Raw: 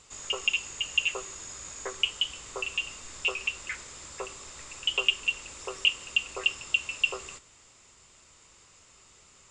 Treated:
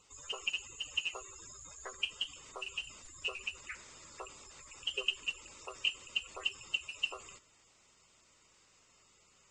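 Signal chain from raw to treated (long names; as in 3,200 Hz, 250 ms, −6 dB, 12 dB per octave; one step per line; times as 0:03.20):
spectral magnitudes quantised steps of 30 dB
level −8.5 dB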